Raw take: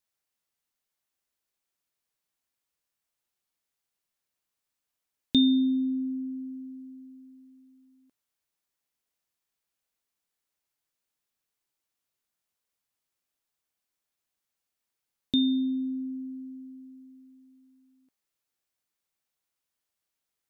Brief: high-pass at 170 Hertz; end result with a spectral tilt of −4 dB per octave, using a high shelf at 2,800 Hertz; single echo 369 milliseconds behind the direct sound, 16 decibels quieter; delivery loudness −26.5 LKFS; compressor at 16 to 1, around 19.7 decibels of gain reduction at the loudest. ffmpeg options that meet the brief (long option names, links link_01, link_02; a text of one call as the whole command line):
ffmpeg -i in.wav -af "highpass=170,highshelf=frequency=2800:gain=8.5,acompressor=threshold=-35dB:ratio=16,aecho=1:1:369:0.158,volume=14dB" out.wav